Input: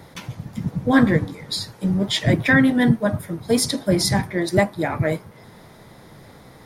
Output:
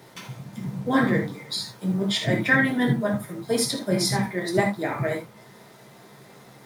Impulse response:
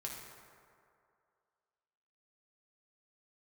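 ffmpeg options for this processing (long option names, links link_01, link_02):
-filter_complex "[0:a]highpass=180,acrusher=bits=7:mix=0:aa=0.5[link_01];[1:a]atrim=start_sample=2205,atrim=end_sample=3969[link_02];[link_01][link_02]afir=irnorm=-1:irlink=0"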